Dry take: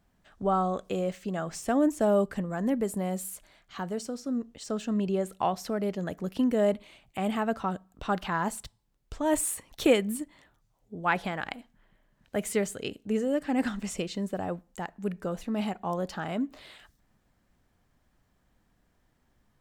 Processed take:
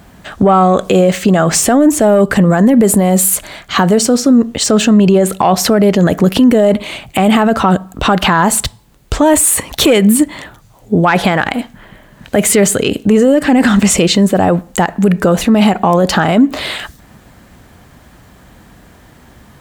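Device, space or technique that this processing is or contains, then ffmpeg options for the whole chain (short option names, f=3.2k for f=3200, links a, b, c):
mastering chain: -af "highpass=49,equalizer=f=5.4k:t=o:w=0.27:g=-3,acompressor=threshold=-33dB:ratio=1.5,asoftclip=type=tanh:threshold=-19dB,alimiter=level_in=30.5dB:limit=-1dB:release=50:level=0:latency=1,volume=-1dB"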